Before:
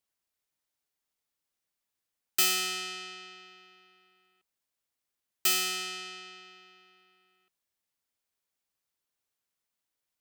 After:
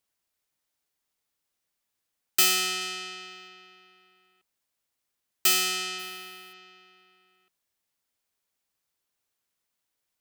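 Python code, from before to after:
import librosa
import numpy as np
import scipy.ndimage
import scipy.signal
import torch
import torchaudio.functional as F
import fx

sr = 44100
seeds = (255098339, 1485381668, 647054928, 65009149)

y = fx.high_shelf(x, sr, hz=12000.0, db=9.0, at=(2.81, 3.48))
y = fx.sample_hold(y, sr, seeds[0], rate_hz=16000.0, jitter_pct=0, at=(5.98, 6.52), fade=0.02)
y = y * 10.0 ** (4.0 / 20.0)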